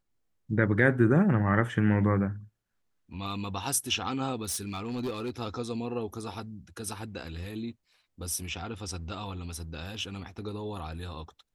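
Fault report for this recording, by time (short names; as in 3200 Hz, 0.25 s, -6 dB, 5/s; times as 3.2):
4.44–5.3 clipped -28.5 dBFS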